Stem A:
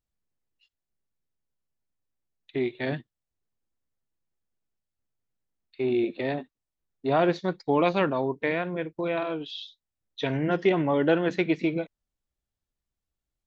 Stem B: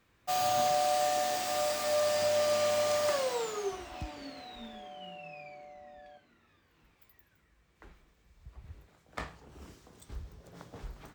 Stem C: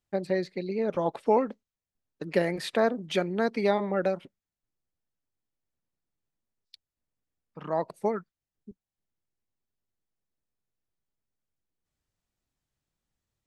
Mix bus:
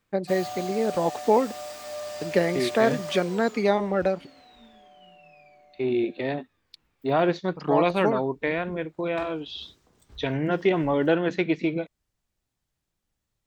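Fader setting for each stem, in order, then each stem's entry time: +0.5, −6.5, +3.0 decibels; 0.00, 0.00, 0.00 seconds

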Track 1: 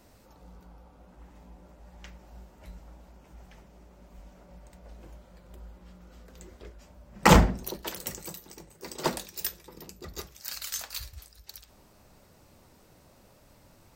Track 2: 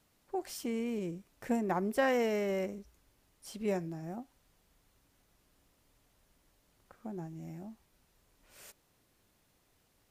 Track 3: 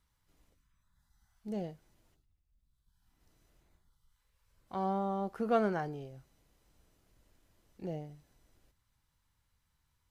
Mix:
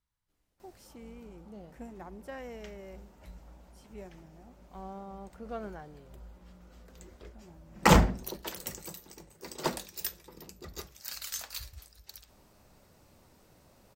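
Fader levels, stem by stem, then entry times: −3.0, −14.0, −10.5 decibels; 0.60, 0.30, 0.00 seconds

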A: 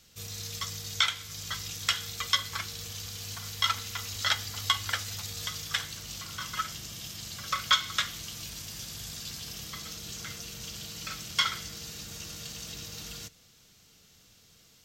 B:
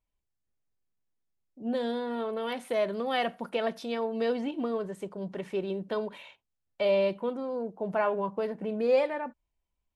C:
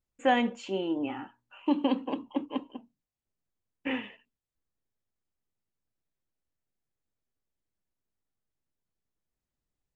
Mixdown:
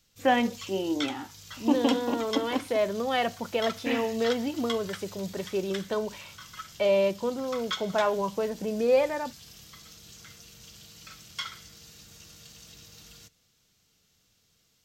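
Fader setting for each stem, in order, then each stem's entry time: −9.0, +2.0, +1.5 decibels; 0.00, 0.00, 0.00 seconds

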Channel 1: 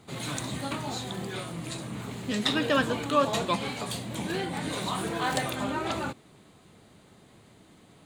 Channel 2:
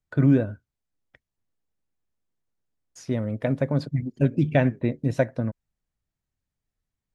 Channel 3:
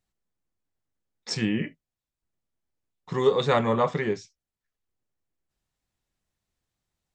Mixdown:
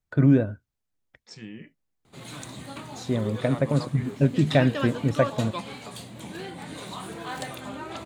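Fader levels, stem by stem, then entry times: −6.0, +0.5, −15.0 decibels; 2.05, 0.00, 0.00 seconds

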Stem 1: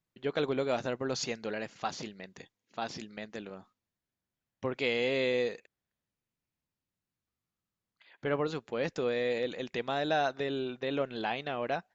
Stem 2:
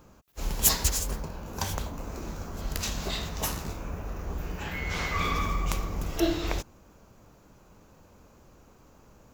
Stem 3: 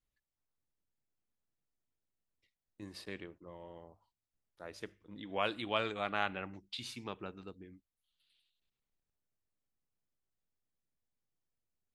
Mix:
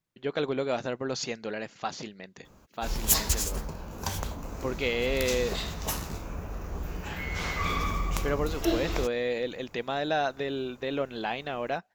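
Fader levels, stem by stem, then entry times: +1.5 dB, −1.0 dB, muted; 0.00 s, 2.45 s, muted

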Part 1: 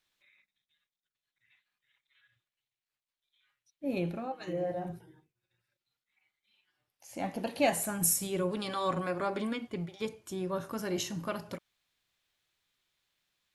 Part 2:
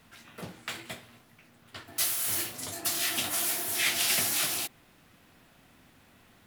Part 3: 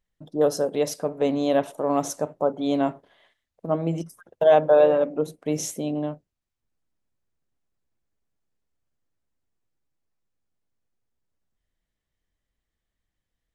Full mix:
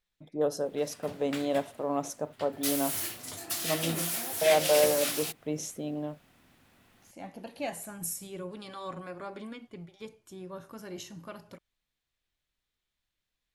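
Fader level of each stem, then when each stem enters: −8.0, −3.5, −7.5 decibels; 0.00, 0.65, 0.00 seconds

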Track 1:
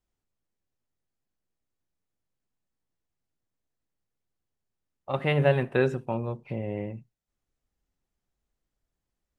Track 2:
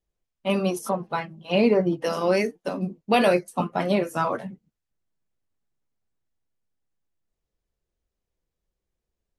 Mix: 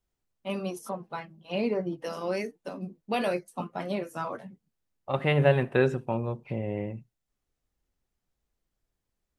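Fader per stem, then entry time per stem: +0.5, −9.0 decibels; 0.00, 0.00 seconds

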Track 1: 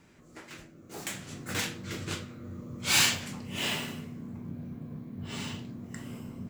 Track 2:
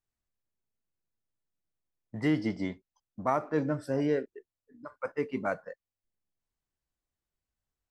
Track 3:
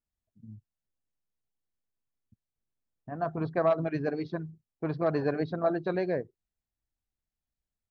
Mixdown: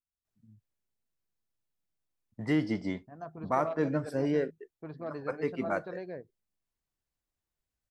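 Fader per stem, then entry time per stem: muted, −0.5 dB, −11.5 dB; muted, 0.25 s, 0.00 s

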